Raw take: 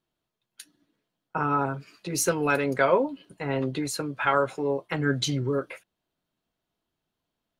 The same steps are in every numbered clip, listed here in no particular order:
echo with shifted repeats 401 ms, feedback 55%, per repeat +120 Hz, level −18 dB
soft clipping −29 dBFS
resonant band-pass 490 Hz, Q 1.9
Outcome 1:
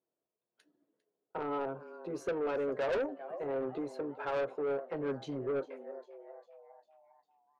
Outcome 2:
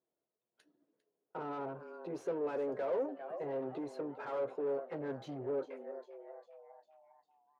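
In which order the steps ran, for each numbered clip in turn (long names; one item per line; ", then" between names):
echo with shifted repeats, then resonant band-pass, then soft clipping
echo with shifted repeats, then soft clipping, then resonant band-pass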